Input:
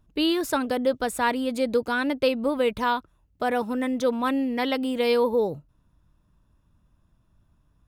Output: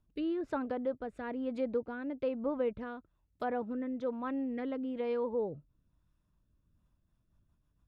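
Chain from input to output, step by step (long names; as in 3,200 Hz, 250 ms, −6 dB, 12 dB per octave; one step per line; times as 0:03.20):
treble cut that deepens with the level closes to 1,400 Hz, closed at −22 dBFS
rotating-speaker cabinet horn 1.1 Hz, later 7 Hz, at 0:06.61
level −8.5 dB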